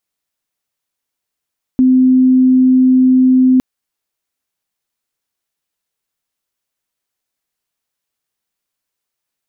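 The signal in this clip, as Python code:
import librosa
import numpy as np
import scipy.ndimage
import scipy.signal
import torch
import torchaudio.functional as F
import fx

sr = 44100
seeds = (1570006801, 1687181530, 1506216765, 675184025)

y = 10.0 ** (-6.0 / 20.0) * np.sin(2.0 * np.pi * (257.0 * (np.arange(round(1.81 * sr)) / sr)))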